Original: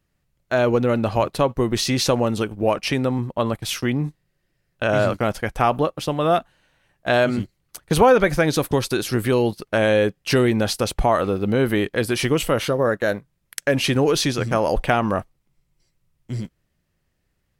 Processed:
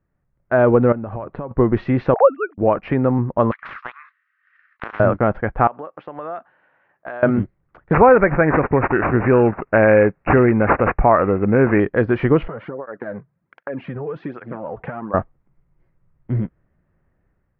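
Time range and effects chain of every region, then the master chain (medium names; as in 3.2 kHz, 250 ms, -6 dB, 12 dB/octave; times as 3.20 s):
0.92–1.51 s: compression 16:1, threshold -28 dBFS + distance through air 160 m
2.14–2.58 s: formants replaced by sine waves + resonant high-pass 660 Hz, resonance Q 6.6 + three bands expanded up and down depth 70%
3.51–5.00 s: steep high-pass 1.2 kHz 72 dB/octave + transient shaper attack +11 dB, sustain -11 dB + spectrum-flattening compressor 10:1
5.67–7.23 s: frequency weighting A + compression 4:1, threshold -34 dBFS
7.93–11.80 s: treble shelf 2.7 kHz +11 dB + careless resampling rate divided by 8×, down none, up filtered
12.48–15.14 s: high-pass 110 Hz + compression 10:1, threshold -28 dBFS + cancelling through-zero flanger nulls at 1.3 Hz, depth 4 ms
whole clip: inverse Chebyshev low-pass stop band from 8.9 kHz, stop band 80 dB; level rider gain up to 7 dB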